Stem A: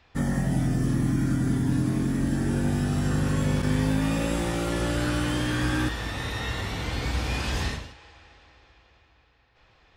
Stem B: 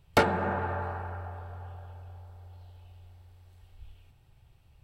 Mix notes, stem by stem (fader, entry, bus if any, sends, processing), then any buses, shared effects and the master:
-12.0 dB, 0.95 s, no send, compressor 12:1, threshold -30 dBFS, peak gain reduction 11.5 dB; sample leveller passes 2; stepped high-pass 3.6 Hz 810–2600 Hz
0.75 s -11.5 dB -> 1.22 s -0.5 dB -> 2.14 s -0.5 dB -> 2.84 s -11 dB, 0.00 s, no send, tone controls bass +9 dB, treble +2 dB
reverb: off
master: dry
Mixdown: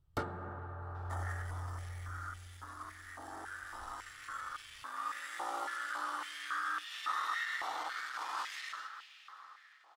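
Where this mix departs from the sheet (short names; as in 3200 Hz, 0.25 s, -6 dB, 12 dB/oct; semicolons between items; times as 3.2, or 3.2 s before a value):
stem B -11.5 dB -> -18.5 dB; master: extra thirty-one-band EQ 200 Hz -10 dB, 315 Hz +9 dB, 1250 Hz +11 dB, 2500 Hz -9 dB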